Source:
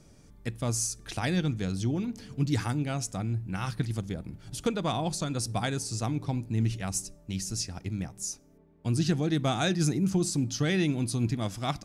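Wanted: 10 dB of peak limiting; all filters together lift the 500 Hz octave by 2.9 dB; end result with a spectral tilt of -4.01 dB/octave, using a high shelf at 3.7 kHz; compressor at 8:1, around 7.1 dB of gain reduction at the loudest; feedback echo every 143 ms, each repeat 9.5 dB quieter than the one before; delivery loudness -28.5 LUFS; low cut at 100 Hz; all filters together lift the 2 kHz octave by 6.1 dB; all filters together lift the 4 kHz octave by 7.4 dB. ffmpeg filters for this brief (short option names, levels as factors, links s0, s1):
-af "highpass=100,equalizer=f=500:t=o:g=3.5,equalizer=f=2000:t=o:g=5,highshelf=f=3700:g=5,equalizer=f=4000:t=o:g=4.5,acompressor=threshold=0.0447:ratio=8,alimiter=level_in=1.12:limit=0.0631:level=0:latency=1,volume=0.891,aecho=1:1:143|286|429|572:0.335|0.111|0.0365|0.012,volume=2"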